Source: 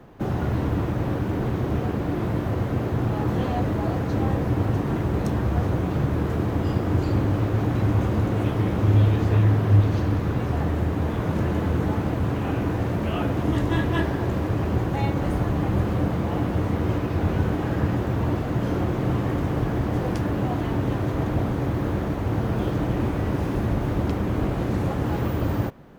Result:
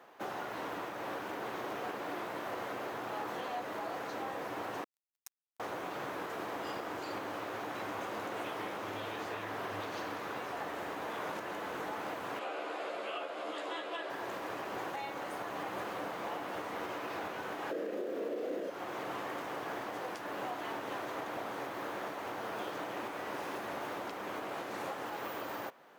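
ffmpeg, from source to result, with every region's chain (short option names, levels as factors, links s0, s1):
-filter_complex "[0:a]asettb=1/sr,asplit=3[s0][s1][s2];[s0]atrim=end=4.844[s3];[s1]atrim=start=4.84:end=5.6,asetpts=PTS-STARTPTS,afade=t=in:d=0.004:c=qsin,afade=t=out:st=0.756:d=0.004:c=qsin,aderivative,aecho=1:1:5.1:0.96,atrim=end_sample=33516,acrusher=bits=4:mix=0:aa=0.5[s4];[s2]atrim=start=5.596[s5];[s3][s4]acrossfade=d=0.004:c1=hsin:c2=qsin[s6];[s6][s5]acrossfade=d=0.004:c1=qsin:c2=hsin,asettb=1/sr,asplit=3[s7][s8][s9];[s7]atrim=end=12.394[s10];[s8]atrim=start=12.39:end=14.1,asetpts=PTS-STARTPTS,afade=t=in:d=0.004:c=qsin,afade=t=out:st=1.706:d=0.004:c=qsin,highpass=390,equalizer=f=570:t=q:w=4:g=4,equalizer=f=930:t=q:w=4:g=-7,equalizer=f=1800:t=q:w=4:g=-7,equalizer=f=5900:t=q:w=4:g=-10,equalizer=f=8800:t=q:w=4:g=-7,lowpass=f=9500:w=0.5412,lowpass=f=9500:w=1.3066,asplit=2[s11][s12];[s12]adelay=13,volume=0.708[s13];[s11][s13]amix=inputs=2:normalize=0,atrim=end_sample=75411[s14];[s9]atrim=start=14.096[s15];[s10][s14]acrossfade=d=0.004:c1=hsin:c2=qsin[s16];[s16][s15]acrossfade=d=0.004:c1=qsin:c2=hsin,asettb=1/sr,asplit=3[s17][s18][s19];[s17]atrim=end=17.714[s20];[s18]atrim=start=17.71:end=18.7,asetpts=PTS-STARTPTS,afade=t=in:d=0.004:c=qsin,afade=t=out:st=0.986:d=0.004:c=qsin,highpass=f=230:w=0.5412,highpass=f=230:w=1.3066,lowshelf=f=660:t=q:w=3:g=10,asplit=2[s21][s22];[s22]adelay=33,volume=0.75[s23];[s21][s23]amix=inputs=2:normalize=0,atrim=end_sample=43659[s24];[s19]atrim=start=18.696[s25];[s20][s24]acrossfade=d=0.004:c1=hsin:c2=qsin[s26];[s26][s25]acrossfade=d=0.004:c1=qsin:c2=hsin,highpass=680,alimiter=level_in=1.5:limit=0.0631:level=0:latency=1:release=283,volume=0.668,volume=0.794"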